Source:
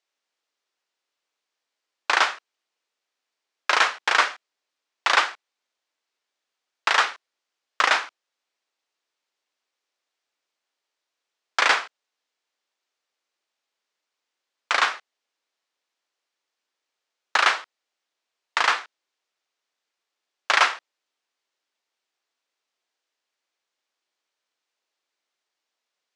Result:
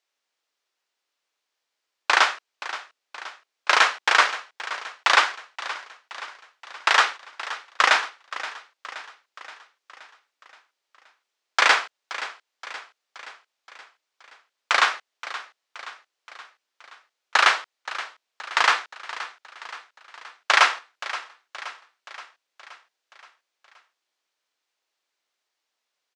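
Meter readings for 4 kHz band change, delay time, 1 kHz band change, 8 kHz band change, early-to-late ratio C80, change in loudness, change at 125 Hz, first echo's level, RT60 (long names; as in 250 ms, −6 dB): +2.0 dB, 524 ms, +2.0 dB, +2.0 dB, no reverb audible, −0.5 dB, can't be measured, −14.5 dB, no reverb audible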